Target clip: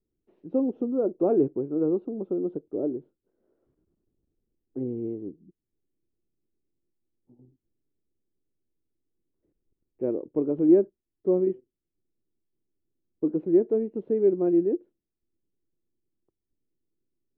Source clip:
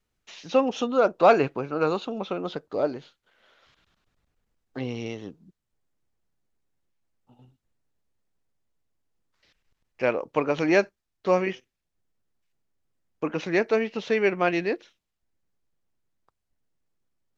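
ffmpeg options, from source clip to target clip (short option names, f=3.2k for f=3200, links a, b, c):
-af "lowpass=f=350:t=q:w=3.7,volume=-4.5dB"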